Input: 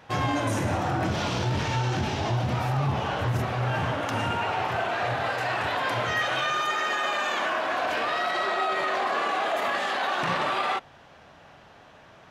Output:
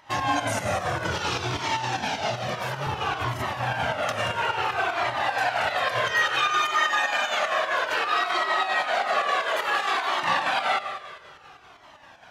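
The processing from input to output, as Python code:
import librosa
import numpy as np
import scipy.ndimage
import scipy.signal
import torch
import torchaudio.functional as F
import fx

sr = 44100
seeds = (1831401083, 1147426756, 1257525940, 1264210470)

y = fx.low_shelf(x, sr, hz=350.0, db=-11.0)
y = fx.echo_heads(y, sr, ms=90, heads='first and second', feedback_pct=58, wet_db=-14)
y = fx.volume_shaper(y, sr, bpm=153, per_beat=2, depth_db=-7, release_ms=65.0, shape='slow start')
y = fx.highpass(y, sr, hz=140.0, slope=12, at=(1.57, 2.87))
y = fx.comb_cascade(y, sr, direction='falling', hz=0.59)
y = y * librosa.db_to_amplitude(8.5)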